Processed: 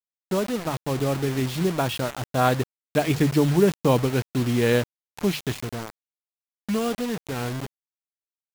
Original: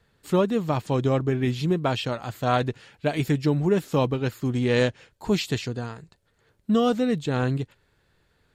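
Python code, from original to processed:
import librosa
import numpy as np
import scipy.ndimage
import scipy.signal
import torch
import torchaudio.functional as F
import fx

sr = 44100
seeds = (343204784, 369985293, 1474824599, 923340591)

y = fx.doppler_pass(x, sr, speed_mps=14, closest_m=21.0, pass_at_s=3.34)
y = scipy.signal.sosfilt(scipy.signal.butter(16, 7000.0, 'lowpass', fs=sr, output='sos'), y)
y = fx.high_shelf(y, sr, hz=5100.0, db=-7.0)
y = fx.hum_notches(y, sr, base_hz=50, count=3)
y = fx.quant_dither(y, sr, seeds[0], bits=6, dither='none')
y = y * 10.0 ** (3.5 / 20.0)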